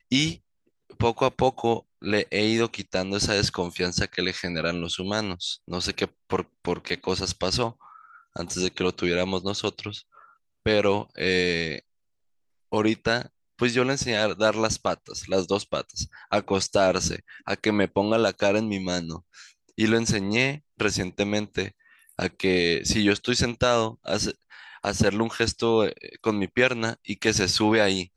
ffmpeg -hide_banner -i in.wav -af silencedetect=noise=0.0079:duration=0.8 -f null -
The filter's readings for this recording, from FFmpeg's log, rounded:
silence_start: 11.79
silence_end: 12.72 | silence_duration: 0.93